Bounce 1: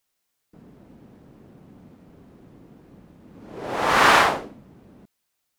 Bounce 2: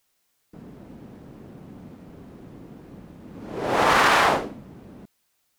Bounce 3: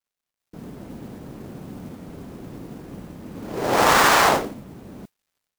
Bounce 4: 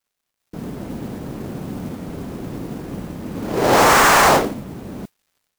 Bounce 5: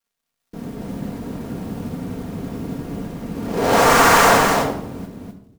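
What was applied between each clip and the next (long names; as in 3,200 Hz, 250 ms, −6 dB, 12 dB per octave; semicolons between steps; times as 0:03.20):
boost into a limiter +13.5 dB; level −8 dB
gap after every zero crossing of 0.12 ms; automatic gain control gain up to 10 dB; noise that follows the level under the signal 23 dB; level −4 dB
hard clipping −16.5 dBFS, distortion −8 dB; level +8 dB
single-tap delay 254 ms −4 dB; rectangular room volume 2,400 cubic metres, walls furnished, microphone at 1.7 metres; level −3 dB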